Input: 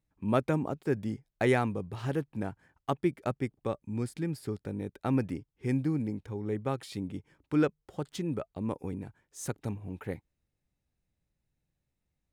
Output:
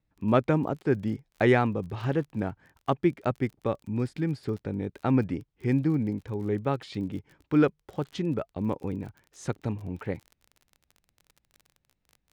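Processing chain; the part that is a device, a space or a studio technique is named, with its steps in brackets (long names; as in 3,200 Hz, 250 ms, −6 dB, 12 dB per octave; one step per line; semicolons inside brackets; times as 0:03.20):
lo-fi chain (low-pass filter 4,400 Hz 12 dB per octave; tape wow and flutter; surface crackle 34 per second −45 dBFS)
level +4.5 dB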